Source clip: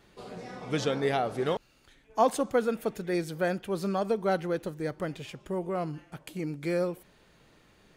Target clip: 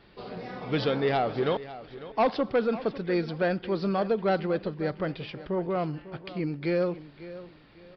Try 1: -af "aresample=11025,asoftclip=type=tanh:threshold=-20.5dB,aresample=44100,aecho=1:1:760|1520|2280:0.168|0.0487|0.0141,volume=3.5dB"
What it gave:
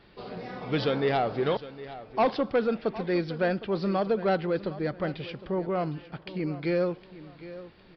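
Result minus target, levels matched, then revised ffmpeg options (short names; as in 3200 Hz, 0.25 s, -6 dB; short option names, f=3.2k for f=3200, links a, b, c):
echo 0.211 s late
-af "aresample=11025,asoftclip=type=tanh:threshold=-20.5dB,aresample=44100,aecho=1:1:549|1098|1647:0.168|0.0487|0.0141,volume=3.5dB"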